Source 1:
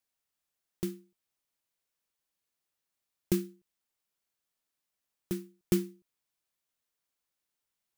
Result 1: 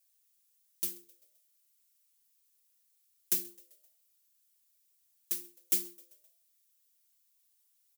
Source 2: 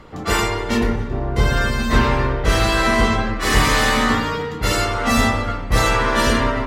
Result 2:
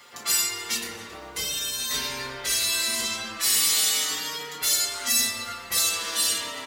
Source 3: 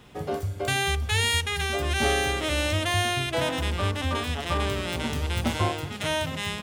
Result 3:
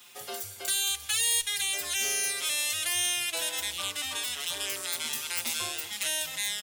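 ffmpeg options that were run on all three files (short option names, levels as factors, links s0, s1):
-filter_complex "[0:a]acrossover=split=460|3000[s0][s1][s2];[s1]acompressor=threshold=0.0316:ratio=6[s3];[s0][s3][s2]amix=inputs=3:normalize=0,aderivative,bandreject=f=115.3:t=h:w=4,bandreject=f=230.6:t=h:w=4,bandreject=f=345.9:t=h:w=4,bandreject=f=461.2:t=h:w=4,bandreject=f=576.5:t=h:w=4,bandreject=f=691.8:t=h:w=4,bandreject=f=807.1:t=h:w=4,bandreject=f=922.4:t=h:w=4,bandreject=f=1037.7:t=h:w=4,bandreject=f=1153:t=h:w=4,asplit=2[s4][s5];[s5]acompressor=threshold=0.00708:ratio=6,volume=0.891[s6];[s4][s6]amix=inputs=2:normalize=0,volume=11.2,asoftclip=hard,volume=0.0891,asplit=5[s7][s8][s9][s10][s11];[s8]adelay=130,afreqshift=82,volume=0.0631[s12];[s9]adelay=260,afreqshift=164,volume=0.0359[s13];[s10]adelay=390,afreqshift=246,volume=0.0204[s14];[s11]adelay=520,afreqshift=328,volume=0.0117[s15];[s7][s12][s13][s14][s15]amix=inputs=5:normalize=0,asplit=2[s16][s17];[s17]adelay=5.2,afreqshift=-0.39[s18];[s16][s18]amix=inputs=2:normalize=1,volume=2.66"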